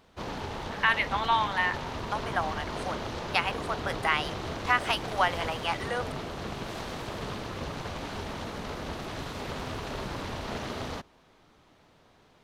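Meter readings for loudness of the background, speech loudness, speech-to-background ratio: −36.0 LKFS, −29.5 LKFS, 6.5 dB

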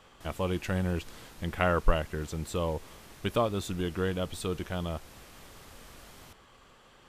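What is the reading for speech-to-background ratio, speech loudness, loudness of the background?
19.0 dB, −32.5 LKFS, −51.5 LKFS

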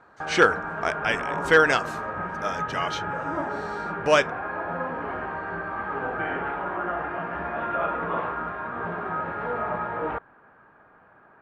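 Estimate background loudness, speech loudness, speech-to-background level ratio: −30.0 LKFS, −23.5 LKFS, 6.5 dB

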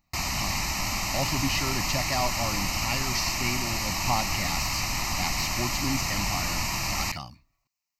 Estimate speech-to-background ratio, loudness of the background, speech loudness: −5.0 dB, −27.5 LKFS, −32.5 LKFS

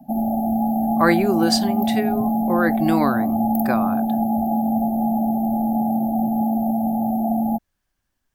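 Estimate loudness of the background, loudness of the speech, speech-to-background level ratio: −21.5 LKFS, −23.0 LKFS, −1.5 dB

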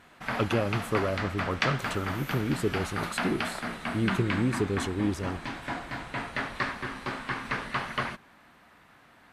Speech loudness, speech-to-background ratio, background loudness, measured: −31.0 LKFS, 2.5 dB, −33.5 LKFS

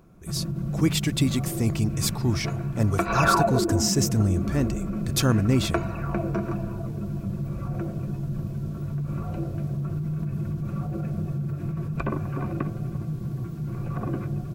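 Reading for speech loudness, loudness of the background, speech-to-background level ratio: −26.0 LKFS, −29.0 LKFS, 3.0 dB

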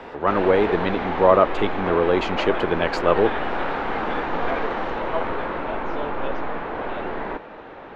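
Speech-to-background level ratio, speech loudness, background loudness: 6.0 dB, −21.0 LKFS, −27.0 LKFS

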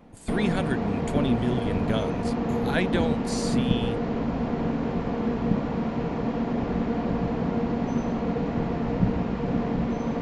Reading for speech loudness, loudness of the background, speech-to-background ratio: −30.5 LKFS, −27.0 LKFS, −3.5 dB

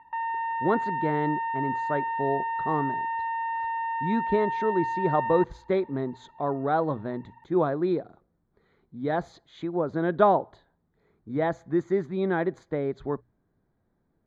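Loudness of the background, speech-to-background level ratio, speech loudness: −30.0 LKFS, 1.5 dB, −28.5 LKFS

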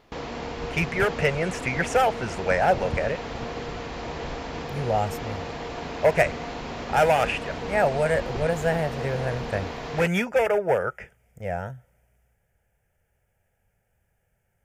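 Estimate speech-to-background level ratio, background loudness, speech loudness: 8.5 dB, −33.5 LKFS, −25.0 LKFS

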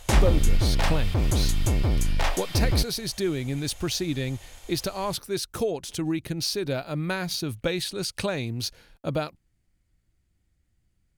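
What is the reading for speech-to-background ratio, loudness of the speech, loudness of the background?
−3.5 dB, −29.5 LKFS, −26.0 LKFS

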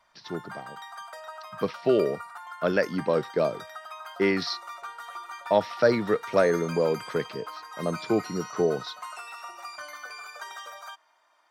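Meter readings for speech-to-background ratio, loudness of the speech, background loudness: 14.0 dB, −26.5 LKFS, −40.5 LKFS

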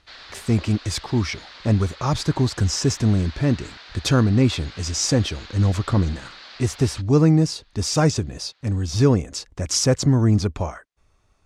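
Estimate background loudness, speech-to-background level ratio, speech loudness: −41.0 LKFS, 19.5 dB, −21.5 LKFS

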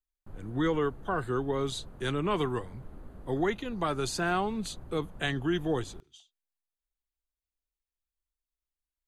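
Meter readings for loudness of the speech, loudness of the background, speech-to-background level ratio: −31.5 LKFS, −51.0 LKFS, 19.5 dB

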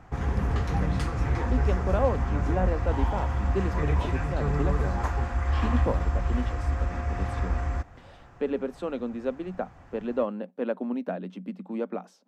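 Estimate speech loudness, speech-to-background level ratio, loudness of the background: −33.5 LKFS, −5.0 dB, −28.5 LKFS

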